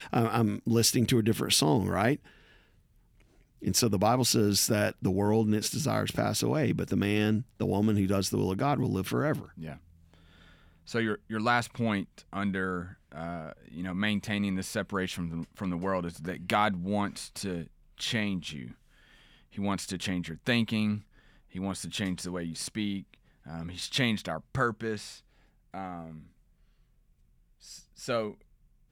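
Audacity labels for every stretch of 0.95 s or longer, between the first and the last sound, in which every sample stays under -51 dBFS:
26.270000	27.610000	silence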